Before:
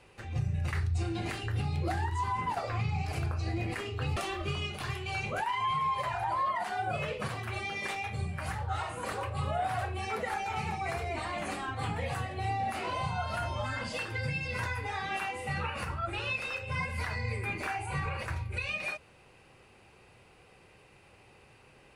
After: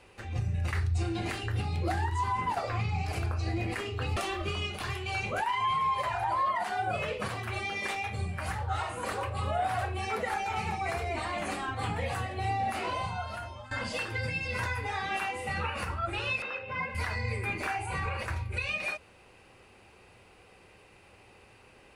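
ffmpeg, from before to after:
-filter_complex "[0:a]asettb=1/sr,asplit=3[a][b][c];[a]atrim=end=16.424[d];[b]atrim=start=16.42:end=16.95,asetpts=PTS-STARTPTS,afade=t=in:d=0.004:c=qsin,afade=t=out:st=0.526:d=0.004:c=qsin,highpass=170,lowpass=2.6k[e];[c]atrim=start=16.946[f];[d][e]acrossfade=d=0.004:c1=hsin:c2=qsin[g];[g][f]acrossfade=d=0.004:c1=qsin:c2=hsin,asplit=2[h][i];[h]atrim=end=13.71,asetpts=PTS-STARTPTS,afade=t=out:st=12.85:d=0.86:silence=0.133352[j];[i]atrim=start=13.71,asetpts=PTS-STARTPTS,afade=t=in:d=0.004:c=hsin:silence=0.133352[k];[j][k]concat=n=2:v=0:a=1,equalizer=f=140:t=o:w=0.2:g=-12.5,volume=2dB"

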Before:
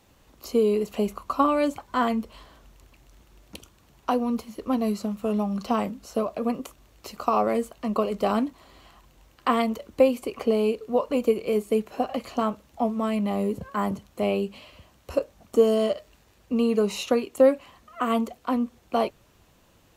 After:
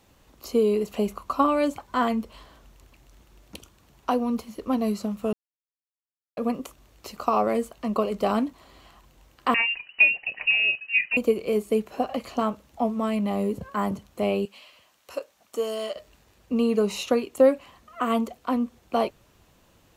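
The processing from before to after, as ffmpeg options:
-filter_complex "[0:a]asettb=1/sr,asplit=3[a][b][c];[a]atrim=end=9.544[d];[b]atrim=start=9.54:end=11.17,asetpts=PTS-STARTPTS,afade=t=in:d=0.004:c=qsin,afade=t=out:st=1.626:d=0.004:c=qsin,lowpass=f=2.6k:t=q:w=0.5098,lowpass=f=2.6k:t=q:w=0.6013,lowpass=f=2.6k:t=q:w=0.9,lowpass=f=2.6k:t=q:w=2.563,afreqshift=-3000[e];[c]atrim=start=11.166[f];[d][e]acrossfade=d=0.004:c1=hsin:c2=qsin[g];[g][f]acrossfade=d=0.004:c1=qsin:c2=hsin,asettb=1/sr,asplit=3[h][i][j];[h]atrim=end=14.454[k];[i]atrim=start=14.45:end=15.96,asetpts=PTS-STARTPTS,afade=t=in:d=0.004:c=qsin,afade=t=out:st=1.506:d=0.004:c=qsin,highpass=f=1.2k:p=1[l];[j]atrim=start=15.956[m];[k][l]acrossfade=d=0.004:c1=hsin:c2=qsin[n];[n][m]acrossfade=d=0.004:c1=qsin:c2=hsin,asplit=3[o][p][q];[o]atrim=end=5.33,asetpts=PTS-STARTPTS,afade=t=out:st=5.326:d=0.004:c=hsin[r];[p]atrim=start=5.33:end=6.37,asetpts=PTS-STARTPTS,volume=0[s];[q]atrim=start=6.37,asetpts=PTS-STARTPTS,afade=t=in:d=0.004:c=hsin[t];[r][s][t]concat=n=3:v=0:a=1"

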